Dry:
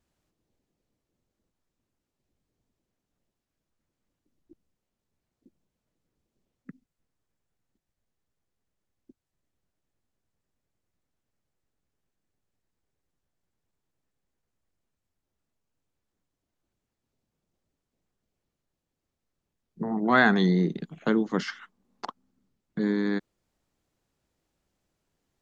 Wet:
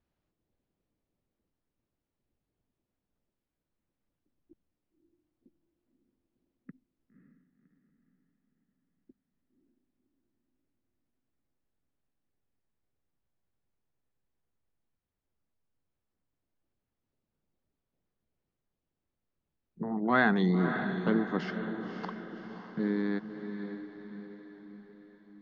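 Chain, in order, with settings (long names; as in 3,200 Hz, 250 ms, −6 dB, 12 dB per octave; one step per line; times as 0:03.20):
high-frequency loss of the air 190 metres
feedback delay with all-pass diffusion 554 ms, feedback 51%, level −8 dB
level −4 dB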